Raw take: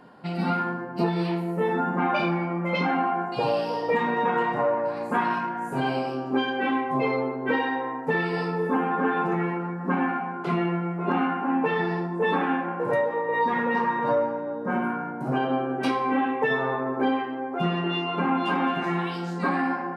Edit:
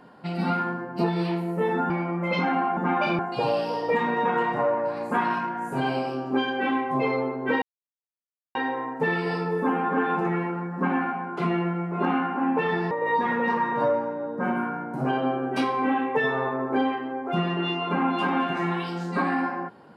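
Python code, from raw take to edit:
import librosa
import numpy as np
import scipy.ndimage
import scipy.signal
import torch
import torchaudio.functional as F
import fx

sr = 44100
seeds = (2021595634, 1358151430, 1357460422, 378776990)

y = fx.edit(x, sr, fx.move(start_s=1.9, length_s=0.42, to_s=3.19),
    fx.insert_silence(at_s=7.62, length_s=0.93),
    fx.cut(start_s=11.98, length_s=1.2), tone=tone)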